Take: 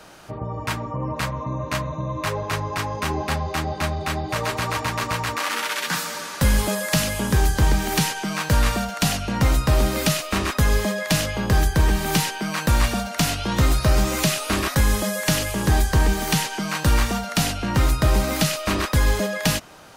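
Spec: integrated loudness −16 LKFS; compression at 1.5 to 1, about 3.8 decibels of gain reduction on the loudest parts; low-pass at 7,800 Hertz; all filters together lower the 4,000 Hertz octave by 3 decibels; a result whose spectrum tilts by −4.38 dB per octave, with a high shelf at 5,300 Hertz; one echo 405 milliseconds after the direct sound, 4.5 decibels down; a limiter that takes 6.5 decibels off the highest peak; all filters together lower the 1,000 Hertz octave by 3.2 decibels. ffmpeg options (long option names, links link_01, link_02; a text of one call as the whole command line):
ffmpeg -i in.wav -af "lowpass=7800,equalizer=frequency=1000:width_type=o:gain=-4,equalizer=frequency=4000:width_type=o:gain=-6,highshelf=frequency=5300:gain=5.5,acompressor=threshold=-24dB:ratio=1.5,alimiter=limit=-17dB:level=0:latency=1,aecho=1:1:405:0.596,volume=10.5dB" out.wav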